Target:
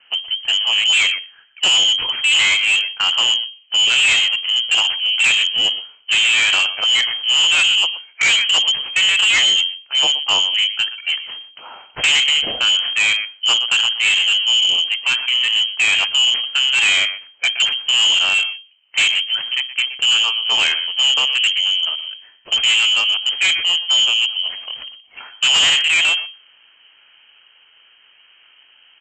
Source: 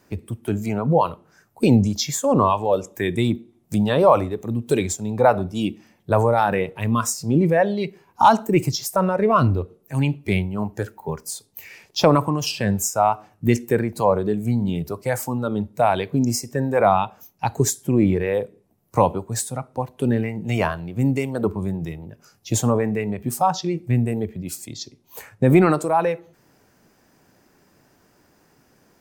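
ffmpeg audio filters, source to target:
-filter_complex "[0:a]aeval=exprs='if(lt(val(0),0),0.447*val(0),val(0))':c=same,asplit=2[a][b];[b]adelay=122.4,volume=-15dB,highshelf=f=4k:g=-2.76[c];[a][c]amix=inputs=2:normalize=0,asplit=2[d][e];[e]acrusher=samples=30:mix=1:aa=0.000001:lfo=1:lforange=48:lforate=0.73,volume=-12dB[f];[d][f]amix=inputs=2:normalize=0,lowpass=f=2.7k:t=q:w=0.5098,lowpass=f=2.7k:t=q:w=0.6013,lowpass=f=2.7k:t=q:w=0.9,lowpass=f=2.7k:t=q:w=2.563,afreqshift=-3200,aresample=16000,volume=20.5dB,asoftclip=hard,volume=-20.5dB,aresample=44100,volume=8.5dB"

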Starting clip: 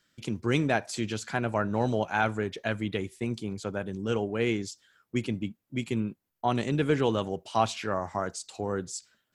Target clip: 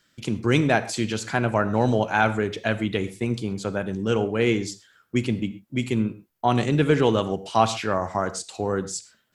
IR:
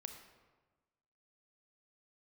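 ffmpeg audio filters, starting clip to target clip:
-filter_complex "[0:a]asplit=2[a][b];[1:a]atrim=start_sample=2205,atrim=end_sample=6174[c];[b][c]afir=irnorm=-1:irlink=0,volume=4.5dB[d];[a][d]amix=inputs=2:normalize=0"

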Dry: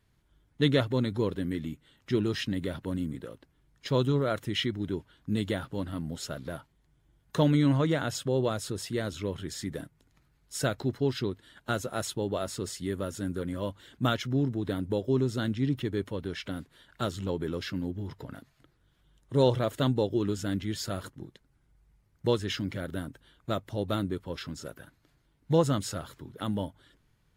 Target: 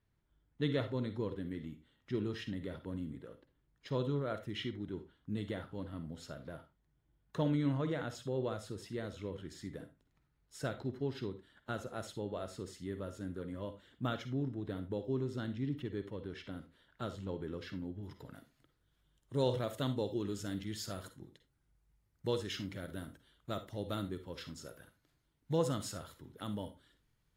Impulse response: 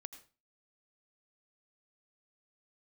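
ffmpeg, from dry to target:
-filter_complex "[0:a]asetnsamples=n=441:p=0,asendcmd='18.03 highshelf g 3.5',highshelf=f=4.1k:g=-9[a];[1:a]atrim=start_sample=2205,asetrate=74970,aresample=44100[b];[a][b]afir=irnorm=-1:irlink=0,volume=1dB"

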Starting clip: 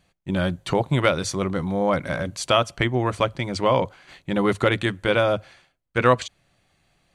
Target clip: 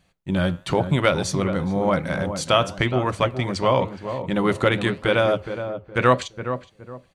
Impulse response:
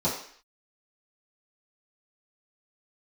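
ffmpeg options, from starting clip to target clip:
-filter_complex "[0:a]flanger=delay=4:depth=7.1:regen=-86:speed=0.96:shape=sinusoidal,asplit=2[a][b];[b]adelay=417,lowpass=f=950:p=1,volume=-8dB,asplit=2[c][d];[d]adelay=417,lowpass=f=950:p=1,volume=0.32,asplit=2[e][f];[f]adelay=417,lowpass=f=950:p=1,volume=0.32,asplit=2[g][h];[h]adelay=417,lowpass=f=950:p=1,volume=0.32[i];[a][c][e][g][i]amix=inputs=5:normalize=0,asplit=2[j][k];[1:a]atrim=start_sample=2205,atrim=end_sample=6615[l];[k][l]afir=irnorm=-1:irlink=0,volume=-32dB[m];[j][m]amix=inputs=2:normalize=0,volume=5dB"

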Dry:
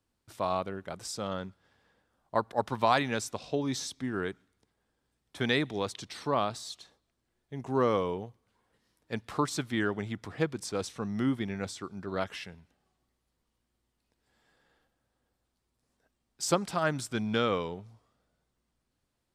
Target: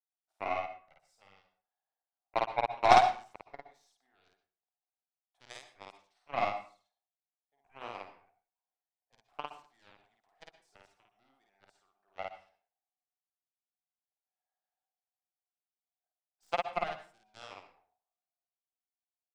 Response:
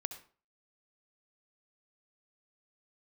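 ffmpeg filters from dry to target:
-filter_complex "[0:a]highpass=f=730:t=q:w=8.1,aeval=exprs='0.75*(cos(1*acos(clip(val(0)/0.75,-1,1)))-cos(1*PI/2))+0.0668*(cos(2*acos(clip(val(0)/0.75,-1,1)))-cos(2*PI/2))+0.237*(cos(3*acos(clip(val(0)/0.75,-1,1)))-cos(3*PI/2))+0.119*(cos(5*acos(clip(val(0)/0.75,-1,1)))-cos(5*PI/2))+0.0944*(cos(7*acos(clip(val(0)/0.75,-1,1)))-cos(7*PI/2))':c=same,asplit=2[a][b];[1:a]atrim=start_sample=2205,adelay=52[c];[b][c]afir=irnorm=-1:irlink=0,volume=0.5dB[d];[a][d]amix=inputs=2:normalize=0,volume=-6.5dB"

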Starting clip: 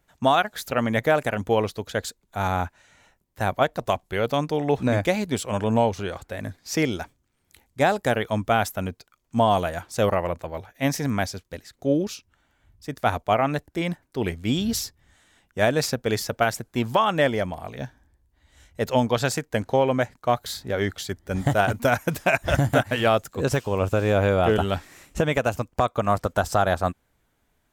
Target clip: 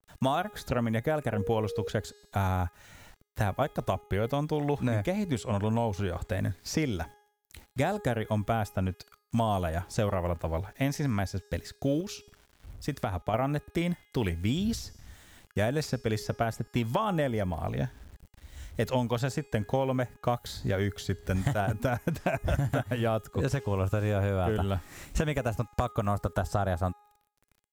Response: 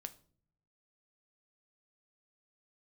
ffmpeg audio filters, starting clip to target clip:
-filter_complex "[0:a]asettb=1/sr,asplit=3[a][b][c];[a]atrim=end=1.324[d];[b]atrim=start=1.32:end=1.88,asetpts=PTS-STARTPTS,afade=t=in:d=0.004:c=qsin,afade=t=out:st=0.556:d=0.004:c=qsin,aeval=exprs='val(0)+0.0355*sin(2*PI*470*n/s)':c=same[e];[c]atrim=start=1.876[f];[d][e]acrossfade=d=0.004:c1=hsin:c2=qsin[g];[g][f]acrossfade=d=0.004:c1=qsin:c2=hsin,acrusher=bits=9:mix=0:aa=0.000001,asettb=1/sr,asplit=3[h][i][j];[h]atrim=end=12.004[k];[i]atrim=start=12:end=13.34,asetpts=PTS-STARTPTS,afade=t=in:d=0.004:c=qsin,afade=t=out:st=1.336:d=0.004:c=qsin,acompressor=threshold=-29dB:ratio=6[l];[j]atrim=start=13.336[m];[k][l]acrossfade=d=0.004:c1=hsin:c2=qsin[n];[n][m]acrossfade=d=0.004:c1=qsin:c2=hsin,lowshelf=f=180:g=10.5,bandreject=f=414.3:t=h:w=4,bandreject=f=828.6:t=h:w=4,bandreject=f=1.2429k:t=h:w=4,bandreject=f=1.6572k:t=h:w=4,bandreject=f=2.0715k:t=h:w=4,bandreject=f=2.4858k:t=h:w=4,bandreject=f=2.9001k:t=h:w=4,bandreject=f=3.3144k:t=h:w=4,bandreject=f=3.7287k:t=h:w=4,bandreject=f=4.143k:t=h:w=4,bandreject=f=4.5573k:t=h:w=4,bandreject=f=4.9716k:t=h:w=4,bandreject=f=5.3859k:t=h:w=4,bandreject=f=5.8002k:t=h:w=4,bandreject=f=6.2145k:t=h:w=4,bandreject=f=6.6288k:t=h:w=4,bandreject=f=7.0431k:t=h:w=4,bandreject=f=7.4574k:t=h:w=4,bandreject=f=7.8717k:t=h:w=4,bandreject=f=8.286k:t=h:w=4,bandreject=f=8.7003k:t=h:w=4,bandreject=f=9.1146k:t=h:w=4,bandreject=f=9.5289k:t=h:w=4,bandreject=f=9.9432k:t=h:w=4,bandreject=f=10.3575k:t=h:w=4,bandreject=f=10.7718k:t=h:w=4,bandreject=f=11.1861k:t=h:w=4,bandreject=f=11.6004k:t=h:w=4,bandreject=f=12.0147k:t=h:w=4,bandreject=f=12.429k:t=h:w=4,bandreject=f=12.8433k:t=h:w=4,bandreject=f=13.2576k:t=h:w=4,bandreject=f=13.6719k:t=h:w=4,bandreject=f=14.0862k:t=h:w=4,bandreject=f=14.5005k:t=h:w=4,bandreject=f=14.9148k:t=h:w=4,bandreject=f=15.3291k:t=h:w=4,bandreject=f=15.7434k:t=h:w=4,bandreject=f=16.1577k:t=h:w=4,acrossover=split=1000|7700[o][p][q];[o]acompressor=threshold=-31dB:ratio=4[r];[p]acompressor=threshold=-40dB:ratio=4[s];[q]acompressor=threshold=-53dB:ratio=4[t];[r][s][t]amix=inputs=3:normalize=0,adynamicequalizer=threshold=0.00398:dfrequency=1600:dqfactor=0.7:tfrequency=1600:tqfactor=0.7:attack=5:release=100:ratio=0.375:range=2.5:mode=cutabove:tftype=highshelf,volume=3dB"

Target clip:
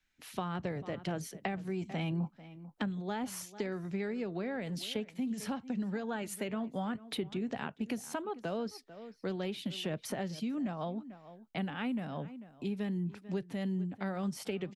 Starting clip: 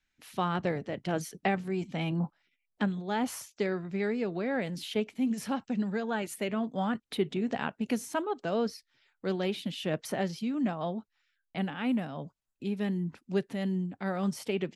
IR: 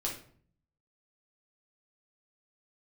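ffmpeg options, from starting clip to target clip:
-filter_complex "[0:a]asplit=2[a][b];[b]adelay=443.1,volume=-20dB,highshelf=f=4k:g=-9.97[c];[a][c]amix=inputs=2:normalize=0,acrossover=split=130[d][e];[e]acompressor=threshold=-35dB:ratio=6[f];[d][f]amix=inputs=2:normalize=0,volume=1dB"

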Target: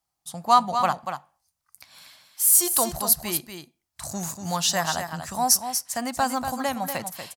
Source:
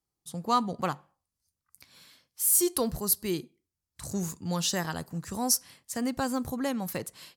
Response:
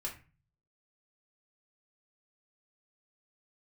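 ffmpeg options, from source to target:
-filter_complex "[0:a]lowshelf=f=550:t=q:w=3:g=-6.5,asplit=2[a][b];[b]aecho=0:1:239:0.398[c];[a][c]amix=inputs=2:normalize=0,volume=6dB"

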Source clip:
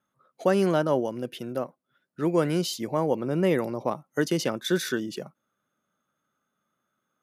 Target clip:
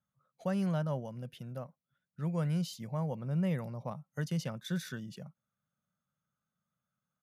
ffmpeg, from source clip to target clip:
-af "firequalizer=gain_entry='entry(160,0);entry(320,-24);entry(540,-13)':delay=0.05:min_phase=1"

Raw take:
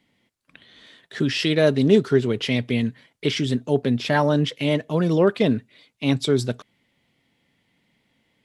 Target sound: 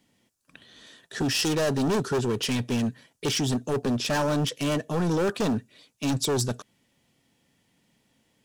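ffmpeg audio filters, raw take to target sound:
-af "asoftclip=type=hard:threshold=-22dB,highshelf=f=4.8k:t=q:w=1.5:g=6.5,bandreject=f=2.1k:w=7.2"

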